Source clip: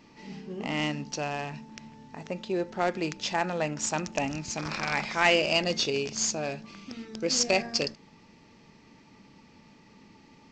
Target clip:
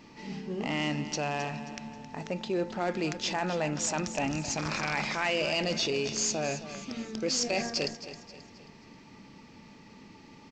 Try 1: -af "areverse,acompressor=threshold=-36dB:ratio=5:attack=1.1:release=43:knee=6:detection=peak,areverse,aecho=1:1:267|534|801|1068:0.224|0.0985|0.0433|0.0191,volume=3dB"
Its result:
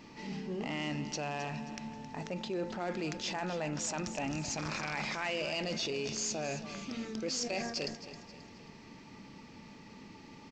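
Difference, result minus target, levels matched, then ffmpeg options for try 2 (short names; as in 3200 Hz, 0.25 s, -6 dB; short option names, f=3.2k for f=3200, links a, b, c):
compressor: peak gain reduction +6.5 dB
-af "areverse,acompressor=threshold=-28dB:ratio=5:attack=1.1:release=43:knee=6:detection=peak,areverse,aecho=1:1:267|534|801|1068:0.224|0.0985|0.0433|0.0191,volume=3dB"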